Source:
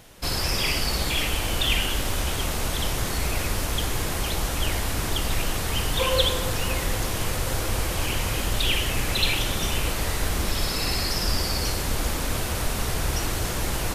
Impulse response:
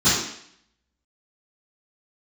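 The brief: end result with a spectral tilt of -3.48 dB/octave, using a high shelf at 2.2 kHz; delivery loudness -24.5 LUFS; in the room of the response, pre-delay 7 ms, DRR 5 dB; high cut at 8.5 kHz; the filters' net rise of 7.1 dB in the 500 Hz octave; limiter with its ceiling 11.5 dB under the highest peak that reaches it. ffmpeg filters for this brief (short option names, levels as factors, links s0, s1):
-filter_complex "[0:a]lowpass=8500,equalizer=f=500:t=o:g=8,highshelf=f=2200:g=3.5,alimiter=limit=0.2:level=0:latency=1,asplit=2[s0][s1];[1:a]atrim=start_sample=2205,adelay=7[s2];[s1][s2]afir=irnorm=-1:irlink=0,volume=0.0631[s3];[s0][s3]amix=inputs=2:normalize=0,volume=0.841"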